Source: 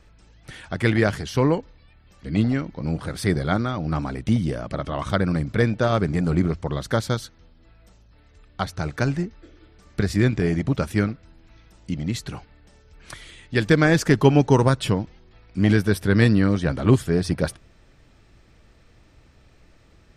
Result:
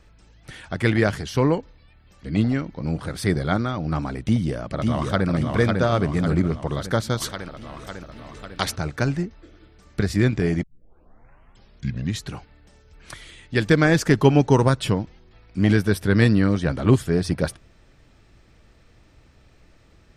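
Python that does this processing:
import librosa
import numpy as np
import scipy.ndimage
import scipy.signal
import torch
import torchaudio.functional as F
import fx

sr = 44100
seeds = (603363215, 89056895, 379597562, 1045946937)

y = fx.echo_throw(x, sr, start_s=4.21, length_s=1.07, ms=550, feedback_pct=55, wet_db=-3.0)
y = fx.spectral_comp(y, sr, ratio=2.0, at=(7.2, 8.75), fade=0.02)
y = fx.edit(y, sr, fx.tape_start(start_s=10.63, length_s=1.63), tone=tone)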